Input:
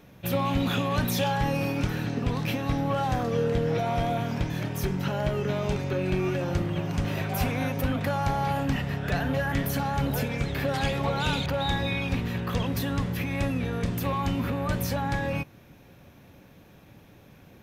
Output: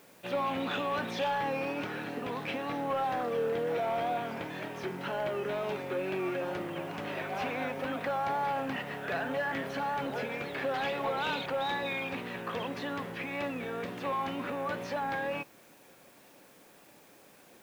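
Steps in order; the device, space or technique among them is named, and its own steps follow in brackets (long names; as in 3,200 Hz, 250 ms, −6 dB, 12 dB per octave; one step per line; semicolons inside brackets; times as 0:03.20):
tape answering machine (band-pass filter 360–3,000 Hz; soft clipping −21.5 dBFS, distortion −23 dB; tape wow and flutter; white noise bed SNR 28 dB)
level −1 dB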